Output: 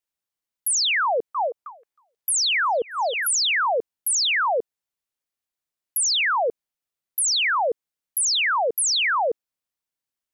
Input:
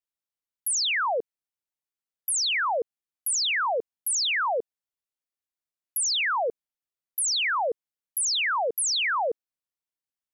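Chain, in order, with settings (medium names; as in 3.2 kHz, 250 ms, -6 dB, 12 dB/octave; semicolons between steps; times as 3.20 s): 1.03–3.27 s: repeats whose band climbs or falls 315 ms, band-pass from 770 Hz, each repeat 1.4 oct, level -0.5 dB; trim +4 dB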